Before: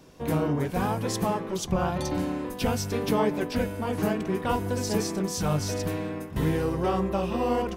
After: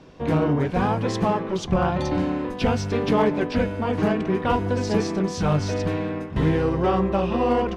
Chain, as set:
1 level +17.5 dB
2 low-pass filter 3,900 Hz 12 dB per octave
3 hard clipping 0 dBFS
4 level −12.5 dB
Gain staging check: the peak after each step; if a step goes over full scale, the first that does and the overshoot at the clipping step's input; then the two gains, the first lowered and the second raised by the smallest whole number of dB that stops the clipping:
+4.5, +4.5, 0.0, −12.5 dBFS
step 1, 4.5 dB
step 1 +12.5 dB, step 4 −7.5 dB

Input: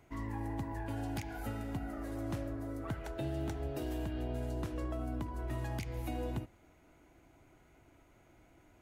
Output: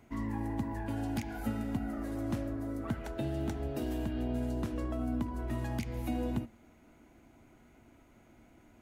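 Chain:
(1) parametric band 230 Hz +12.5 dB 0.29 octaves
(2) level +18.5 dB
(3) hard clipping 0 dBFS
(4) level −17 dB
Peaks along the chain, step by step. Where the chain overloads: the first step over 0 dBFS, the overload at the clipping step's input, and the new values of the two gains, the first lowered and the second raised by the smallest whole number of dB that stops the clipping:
−23.0, −4.5, −4.5, −21.5 dBFS
no step passes full scale

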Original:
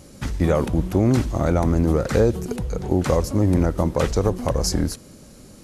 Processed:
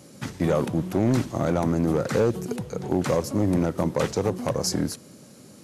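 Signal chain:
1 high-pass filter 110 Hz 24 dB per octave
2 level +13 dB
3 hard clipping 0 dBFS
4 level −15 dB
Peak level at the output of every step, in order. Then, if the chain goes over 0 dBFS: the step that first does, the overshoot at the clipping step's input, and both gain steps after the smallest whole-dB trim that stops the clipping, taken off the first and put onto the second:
−6.5, +6.5, 0.0, −15.0 dBFS
step 2, 6.5 dB
step 2 +6 dB, step 4 −8 dB

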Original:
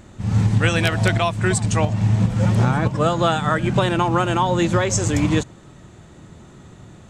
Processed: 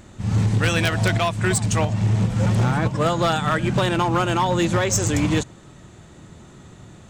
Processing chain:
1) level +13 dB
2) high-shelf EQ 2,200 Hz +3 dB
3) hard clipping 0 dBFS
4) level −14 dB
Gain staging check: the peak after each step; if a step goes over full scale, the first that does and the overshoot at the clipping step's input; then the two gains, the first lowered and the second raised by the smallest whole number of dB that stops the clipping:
+8.0, +9.0, 0.0, −14.0 dBFS
step 1, 9.0 dB
step 1 +4 dB, step 4 −5 dB

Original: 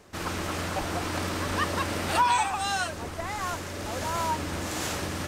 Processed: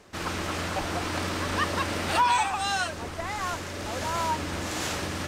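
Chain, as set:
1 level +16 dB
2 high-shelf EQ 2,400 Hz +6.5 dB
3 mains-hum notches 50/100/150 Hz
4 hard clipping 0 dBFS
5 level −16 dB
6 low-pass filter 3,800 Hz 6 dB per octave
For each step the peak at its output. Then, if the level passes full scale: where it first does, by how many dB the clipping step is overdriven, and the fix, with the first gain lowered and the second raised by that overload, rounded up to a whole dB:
+3.0, +5.5, +5.5, 0.0, −16.0, −16.0 dBFS
step 1, 5.5 dB
step 1 +10 dB, step 5 −10 dB

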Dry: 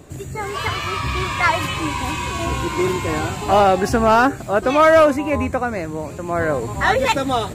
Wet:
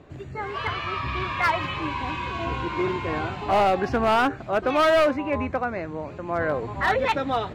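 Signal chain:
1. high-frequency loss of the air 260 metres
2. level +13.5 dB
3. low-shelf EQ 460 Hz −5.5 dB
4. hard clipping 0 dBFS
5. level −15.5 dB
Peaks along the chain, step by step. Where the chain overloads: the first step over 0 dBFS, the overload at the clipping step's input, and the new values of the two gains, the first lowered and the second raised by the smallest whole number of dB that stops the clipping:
−6.0, +7.5, +6.5, 0.0, −15.5 dBFS
step 2, 6.5 dB
step 2 +6.5 dB, step 5 −8.5 dB

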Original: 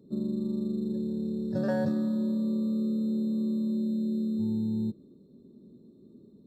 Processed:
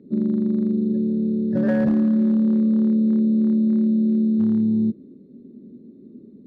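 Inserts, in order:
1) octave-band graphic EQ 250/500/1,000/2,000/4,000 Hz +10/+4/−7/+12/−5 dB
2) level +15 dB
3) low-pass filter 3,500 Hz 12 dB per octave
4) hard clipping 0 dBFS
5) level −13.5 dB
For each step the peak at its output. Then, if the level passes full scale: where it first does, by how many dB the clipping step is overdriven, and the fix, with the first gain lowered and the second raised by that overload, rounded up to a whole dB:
−10.0, +5.0, +5.0, 0.0, −13.5 dBFS
step 2, 5.0 dB
step 2 +10 dB, step 5 −8.5 dB

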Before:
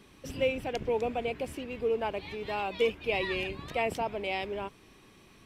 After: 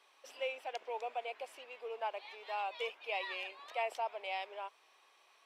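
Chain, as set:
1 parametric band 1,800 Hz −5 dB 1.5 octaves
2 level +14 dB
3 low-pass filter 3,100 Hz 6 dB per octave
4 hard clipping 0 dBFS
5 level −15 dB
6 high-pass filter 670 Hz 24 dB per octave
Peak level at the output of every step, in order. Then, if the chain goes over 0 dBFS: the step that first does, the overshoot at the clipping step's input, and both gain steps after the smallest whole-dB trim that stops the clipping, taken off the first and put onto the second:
−16.5, −2.5, −3.0, −3.0, −18.0, −24.0 dBFS
no step passes full scale

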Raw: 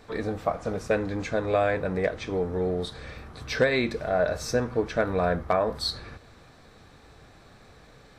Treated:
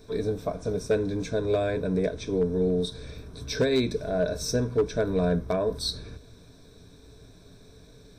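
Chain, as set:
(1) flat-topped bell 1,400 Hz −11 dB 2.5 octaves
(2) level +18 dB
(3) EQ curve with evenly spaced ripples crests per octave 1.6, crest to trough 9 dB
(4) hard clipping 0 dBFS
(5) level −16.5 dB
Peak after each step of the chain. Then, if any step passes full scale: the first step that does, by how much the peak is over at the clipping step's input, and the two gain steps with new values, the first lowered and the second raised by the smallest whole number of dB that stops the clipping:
−11.5, +6.5, +5.5, 0.0, −16.5 dBFS
step 2, 5.5 dB
step 2 +12 dB, step 5 −10.5 dB

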